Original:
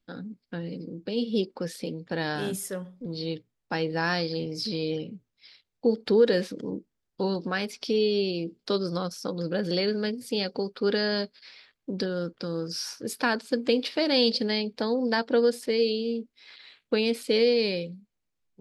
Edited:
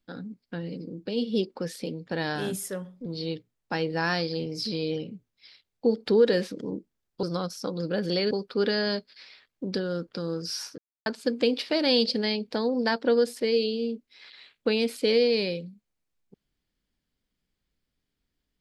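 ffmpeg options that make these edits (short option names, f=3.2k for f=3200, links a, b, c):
-filter_complex "[0:a]asplit=5[a][b][c][d][e];[a]atrim=end=7.232[f];[b]atrim=start=8.838:end=9.922[g];[c]atrim=start=10.568:end=13.04,asetpts=PTS-STARTPTS,afade=t=out:st=2.468:d=0.004:c=hsin[h];[d]atrim=start=13.04:end=13.32,asetpts=PTS-STARTPTS,volume=0[i];[e]atrim=start=13.32,asetpts=PTS-STARTPTS,afade=t=in:d=0.004:c=hsin[j];[f][g]acrossfade=d=0.004:c1=hsin:c2=hsin[k];[h][i][j]concat=n=3:v=0:a=1[l];[k][l]acrossfade=d=0.004:c1=hsin:c2=hsin"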